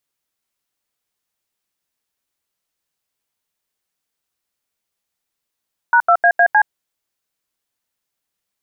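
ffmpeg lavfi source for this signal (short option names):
-f lavfi -i "aevalsrc='0.282*clip(min(mod(t,0.154),0.072-mod(t,0.154))/0.002,0,1)*(eq(floor(t/0.154),0)*(sin(2*PI*941*mod(t,0.154))+sin(2*PI*1477*mod(t,0.154)))+eq(floor(t/0.154),1)*(sin(2*PI*697*mod(t,0.154))+sin(2*PI*1336*mod(t,0.154)))+eq(floor(t/0.154),2)*(sin(2*PI*697*mod(t,0.154))+sin(2*PI*1633*mod(t,0.154)))+eq(floor(t/0.154),3)*(sin(2*PI*697*mod(t,0.154))+sin(2*PI*1633*mod(t,0.154)))+eq(floor(t/0.154),4)*(sin(2*PI*852*mod(t,0.154))+sin(2*PI*1633*mod(t,0.154))))':d=0.77:s=44100"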